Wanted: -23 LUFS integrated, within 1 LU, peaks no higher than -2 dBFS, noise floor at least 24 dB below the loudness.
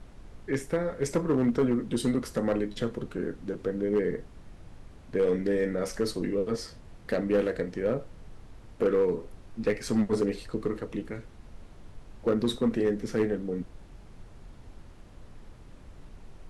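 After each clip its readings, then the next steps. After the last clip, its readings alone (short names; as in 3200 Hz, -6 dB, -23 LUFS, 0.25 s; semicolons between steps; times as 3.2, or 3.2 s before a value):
clipped 0.6%; flat tops at -18.5 dBFS; noise floor -50 dBFS; noise floor target -54 dBFS; loudness -29.5 LUFS; peak -18.5 dBFS; loudness target -23.0 LUFS
-> clip repair -18.5 dBFS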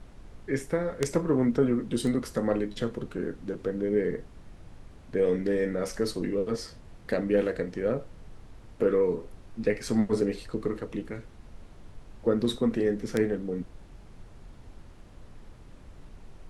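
clipped 0.0%; noise floor -50 dBFS; noise floor target -53 dBFS
-> noise print and reduce 6 dB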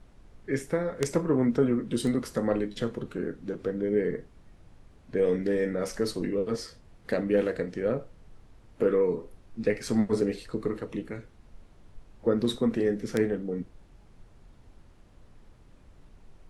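noise floor -56 dBFS; loudness -29.0 LUFS; peak -9.5 dBFS; loudness target -23.0 LUFS
-> gain +6 dB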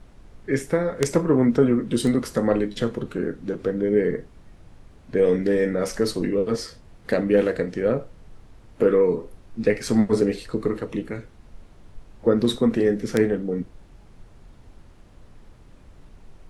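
loudness -23.0 LUFS; peak -3.5 dBFS; noise floor -50 dBFS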